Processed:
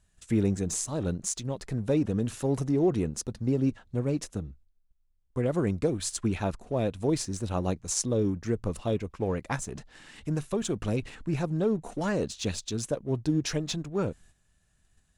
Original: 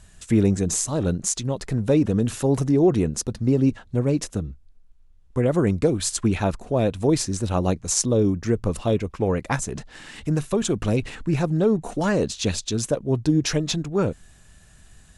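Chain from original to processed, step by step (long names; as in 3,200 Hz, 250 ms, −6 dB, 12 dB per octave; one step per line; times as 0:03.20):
noise gate −45 dBFS, range −9 dB
in parallel at −10 dB: dead-zone distortion −33.5 dBFS
on the sum: level −9 dB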